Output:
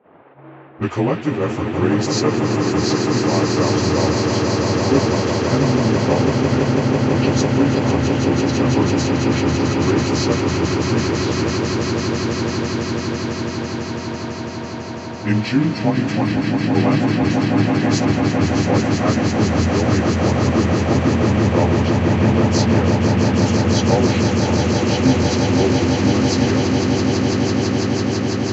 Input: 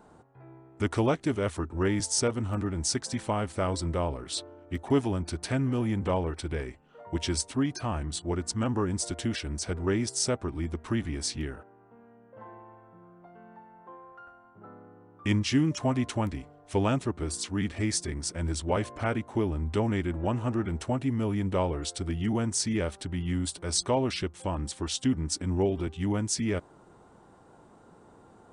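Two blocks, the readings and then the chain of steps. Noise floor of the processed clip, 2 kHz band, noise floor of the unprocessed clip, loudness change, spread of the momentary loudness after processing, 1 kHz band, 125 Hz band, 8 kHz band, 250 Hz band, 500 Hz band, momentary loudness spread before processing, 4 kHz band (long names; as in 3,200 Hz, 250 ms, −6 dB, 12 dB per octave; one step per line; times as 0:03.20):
−28 dBFS, +14.5 dB, −56 dBFS, +12.0 dB, 6 LU, +13.5 dB, +13.5 dB, +4.5 dB, +14.0 dB, +13.0 dB, 8 LU, +11.0 dB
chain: partials spread apart or drawn together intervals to 92%
high-pass filter 91 Hz
notch filter 3,600 Hz, Q 6.5
noise in a band 270–2,900 Hz −47 dBFS
noise gate −46 dBFS, range −12 dB
high-shelf EQ 7,000 Hz −8.5 dB
low-pass that shuts in the quiet parts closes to 520 Hz, open at −27.5 dBFS
echo that builds up and dies away 166 ms, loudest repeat 8, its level −6.5 dB
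level +9 dB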